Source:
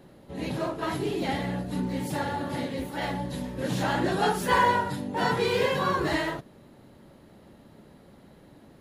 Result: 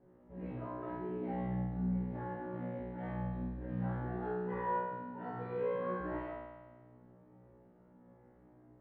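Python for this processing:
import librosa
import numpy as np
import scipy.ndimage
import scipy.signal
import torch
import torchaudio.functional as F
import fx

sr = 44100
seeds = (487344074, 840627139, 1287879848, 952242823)

y = scipy.signal.sosfilt(scipy.signal.bessel(4, 1200.0, 'lowpass', norm='mag', fs=sr, output='sos'), x)
y = fx.comb_fb(y, sr, f0_hz=61.0, decay_s=1.3, harmonics='all', damping=0.0, mix_pct=100)
y = fx.rider(y, sr, range_db=5, speed_s=2.0)
y = y * 10.0 ** (1.0 / 20.0)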